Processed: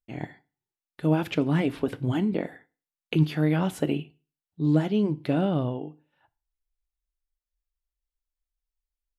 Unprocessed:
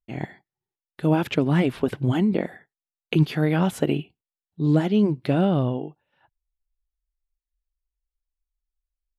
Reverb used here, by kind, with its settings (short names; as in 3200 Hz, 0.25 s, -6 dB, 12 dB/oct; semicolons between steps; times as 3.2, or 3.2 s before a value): FDN reverb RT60 0.35 s, low-frequency decay 1.05×, high-frequency decay 1×, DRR 13 dB; gain -4 dB